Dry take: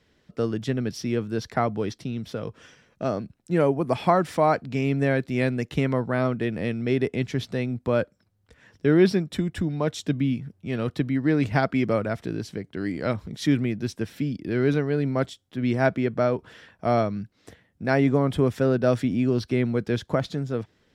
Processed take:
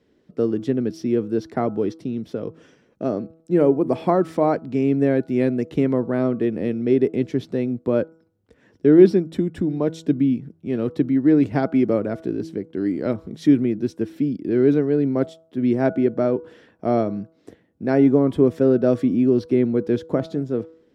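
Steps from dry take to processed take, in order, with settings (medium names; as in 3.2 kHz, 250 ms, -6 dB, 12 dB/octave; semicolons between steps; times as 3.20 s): peaking EQ 330 Hz +15 dB 2 oct; de-hum 162.5 Hz, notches 9; trim -7 dB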